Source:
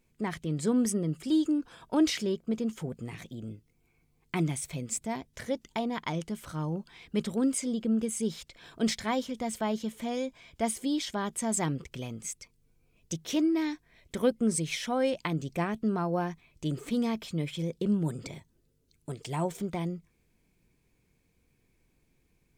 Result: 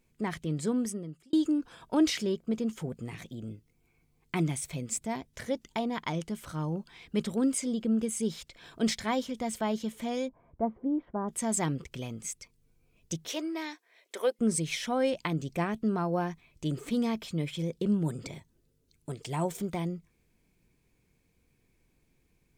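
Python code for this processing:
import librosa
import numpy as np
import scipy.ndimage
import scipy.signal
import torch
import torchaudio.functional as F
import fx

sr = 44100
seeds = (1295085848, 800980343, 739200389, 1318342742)

y = fx.lowpass(x, sr, hz=1100.0, slope=24, at=(10.27, 11.28), fade=0.02)
y = fx.highpass(y, sr, hz=410.0, slope=24, at=(13.28, 14.39))
y = fx.high_shelf(y, sr, hz=7600.0, db=6.0, at=(19.41, 19.81))
y = fx.edit(y, sr, fx.fade_out_span(start_s=0.49, length_s=0.84), tone=tone)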